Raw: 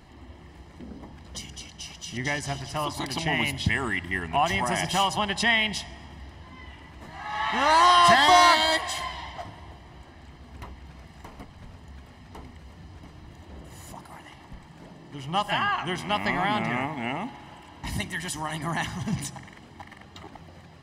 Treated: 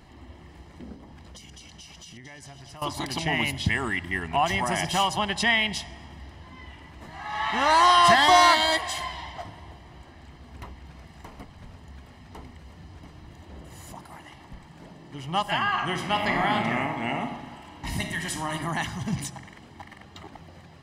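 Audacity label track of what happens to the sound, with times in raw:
0.940000	2.820000	compressor, threshold -42 dBFS
15.610000	18.550000	reverb throw, RT60 0.87 s, DRR 4 dB

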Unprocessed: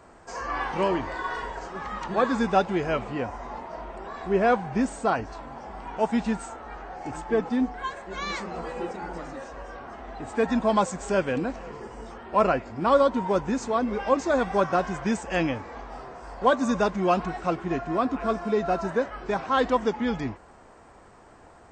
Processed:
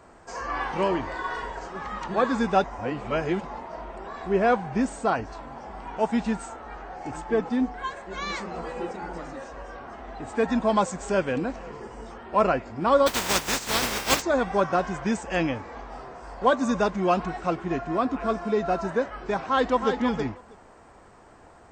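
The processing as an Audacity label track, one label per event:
2.640000	3.450000	reverse
13.060000	14.210000	spectral contrast lowered exponent 0.24
19.450000	19.990000	echo throw 0.32 s, feedback 10%, level -6.5 dB

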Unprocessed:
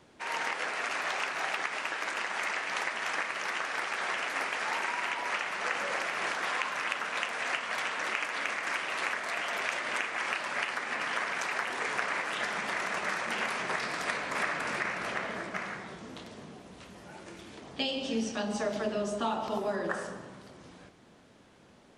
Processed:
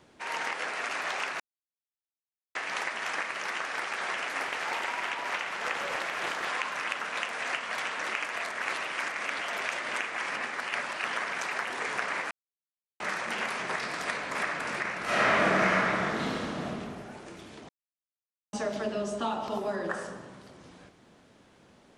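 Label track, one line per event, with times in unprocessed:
1.400000	2.550000	mute
4.430000	6.480000	Doppler distortion depth 0.36 ms
8.360000	9.390000	reverse
10.300000	11.070000	reverse
12.310000	13.000000	mute
15.040000	16.660000	reverb throw, RT60 2.4 s, DRR -12 dB
17.690000	18.530000	mute

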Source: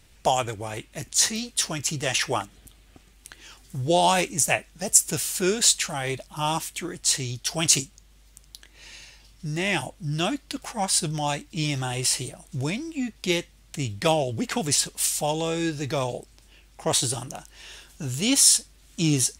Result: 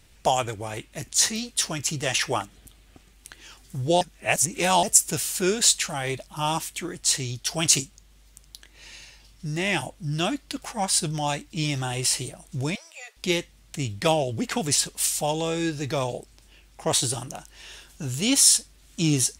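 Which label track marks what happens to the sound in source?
4.010000	4.830000	reverse
12.750000	13.170000	steep high-pass 470 Hz 72 dB/oct

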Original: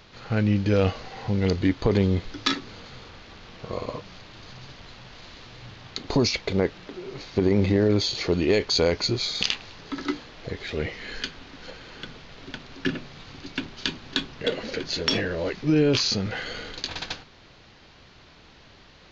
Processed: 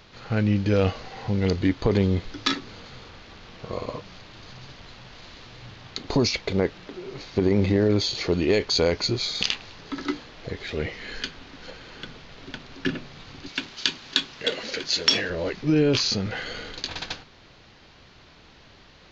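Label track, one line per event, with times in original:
13.480000	15.300000	tilt +2.5 dB/oct

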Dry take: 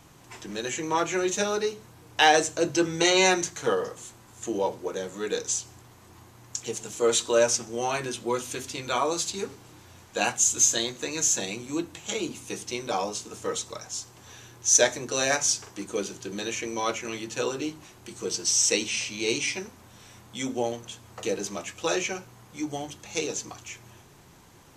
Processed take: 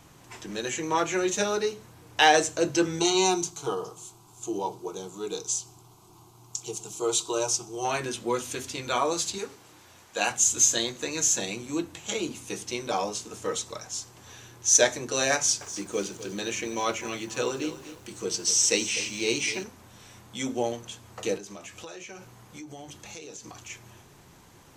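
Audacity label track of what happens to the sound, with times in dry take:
2.990000	7.850000	fixed phaser centre 360 Hz, stages 8
9.380000	10.310000	low shelf 250 Hz -11 dB
15.360000	19.640000	lo-fi delay 0.249 s, feedback 35%, word length 8-bit, level -13 dB
21.370000	23.700000	compressor 12:1, threshold -38 dBFS

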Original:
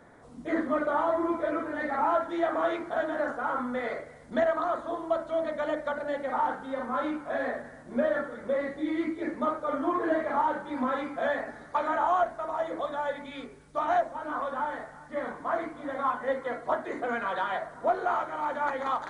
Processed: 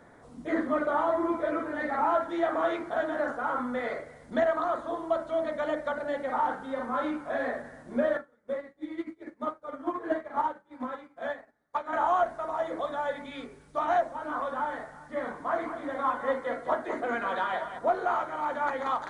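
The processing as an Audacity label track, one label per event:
8.170000	11.930000	upward expander 2.5:1, over -43 dBFS
15.440000	17.790000	echo 0.204 s -9.5 dB

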